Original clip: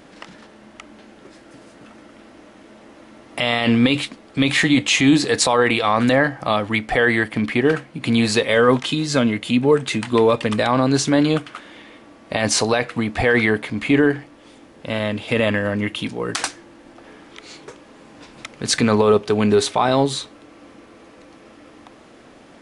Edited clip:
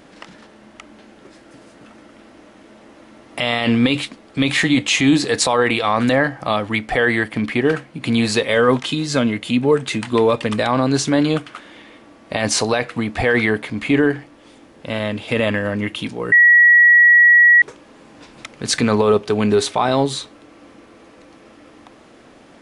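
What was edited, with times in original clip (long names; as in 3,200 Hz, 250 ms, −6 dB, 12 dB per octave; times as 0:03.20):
0:16.32–0:17.62: beep over 1,920 Hz −6.5 dBFS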